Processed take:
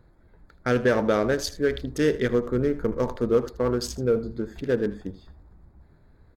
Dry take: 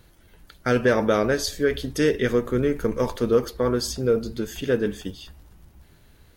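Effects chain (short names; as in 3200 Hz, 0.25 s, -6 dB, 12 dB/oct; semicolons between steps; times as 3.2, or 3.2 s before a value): Wiener smoothing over 15 samples; on a send: echo 79 ms -16 dB; on the sum: gain -1.5 dB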